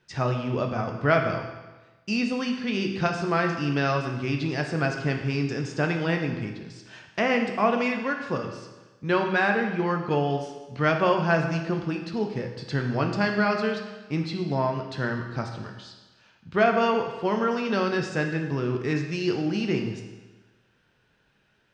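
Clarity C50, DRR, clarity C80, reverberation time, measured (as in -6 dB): 6.0 dB, 3.0 dB, 8.0 dB, 1.2 s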